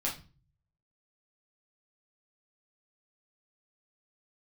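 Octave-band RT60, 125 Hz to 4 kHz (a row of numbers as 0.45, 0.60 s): 0.90, 0.55, 0.35, 0.35, 0.30, 0.30 s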